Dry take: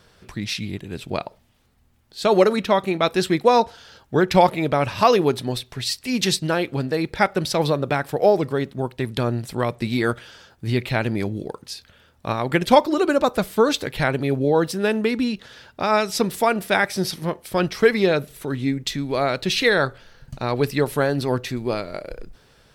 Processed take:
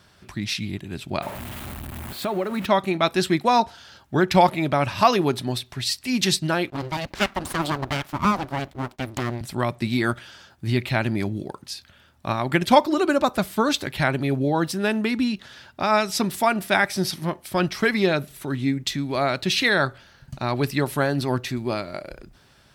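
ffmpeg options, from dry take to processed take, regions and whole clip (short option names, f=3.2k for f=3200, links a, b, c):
-filter_complex "[0:a]asettb=1/sr,asplit=3[a][b][c];[a]atrim=end=1.224[d];[b]atrim=start=1.22:end=2.66,asetpts=PTS-STARTPTS,afade=t=in:d=0.004:c=qsin,afade=t=out:st=1.436:d=0.004:c=qsin,aeval=exprs='val(0)+0.5*0.0447*sgn(val(0))':c=same,equalizer=f=5.5k:w=1:g=-11,acompressor=threshold=-22dB:ratio=3:attack=3.2:release=140:knee=1:detection=peak[e];[c]atrim=start=2.656[f];[d][e]acrossfade=d=0.004:c1=hsin:c2=qsin[g];[g][f]acrossfade=d=0.004:c1=qsin:c2=hsin,asettb=1/sr,asplit=3[h][i][j];[h]atrim=end=6.704[k];[i]atrim=start=6.7:end=9.41,asetpts=PTS-STARTPTS,afade=t=in:d=0.004:c=qsin,afade=t=out:st=2.706:d=0.004:c=qsin,agate=range=-33dB:threshold=-43dB:ratio=3:release=100:detection=peak,equalizer=f=8.4k:w=1.5:g=-7.5,aeval=exprs='abs(val(0))':c=same[l];[j]atrim=start=9.406[m];[k][l]acrossfade=d=0.004:c1=hsin:c2=qsin[n];[n][m]acrossfade=d=0.004:c1=qsin:c2=hsin,highpass=49,equalizer=f=470:t=o:w=0.21:g=-14"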